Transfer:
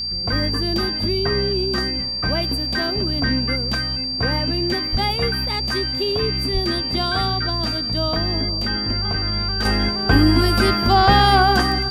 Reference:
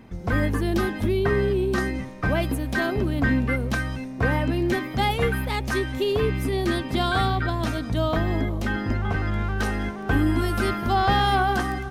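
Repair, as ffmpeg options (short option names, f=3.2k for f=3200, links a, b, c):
-filter_complex "[0:a]bandreject=f=60.3:t=h:w=4,bandreject=f=120.6:t=h:w=4,bandreject=f=180.9:t=h:w=4,bandreject=f=241.2:t=h:w=4,bandreject=f=4.7k:w=30,asplit=3[a][b][c];[a]afade=t=out:st=4.91:d=0.02[d];[b]highpass=f=140:w=0.5412,highpass=f=140:w=1.3066,afade=t=in:st=4.91:d=0.02,afade=t=out:st=5.03:d=0.02[e];[c]afade=t=in:st=5.03:d=0.02[f];[d][e][f]amix=inputs=3:normalize=0,asplit=3[g][h][i];[g]afade=t=out:st=6.53:d=0.02[j];[h]highpass=f=140:w=0.5412,highpass=f=140:w=1.3066,afade=t=in:st=6.53:d=0.02,afade=t=out:st=6.65:d=0.02[k];[i]afade=t=in:st=6.65:d=0.02[l];[j][k][l]amix=inputs=3:normalize=0,asetnsamples=n=441:p=0,asendcmd='9.65 volume volume -6.5dB',volume=0dB"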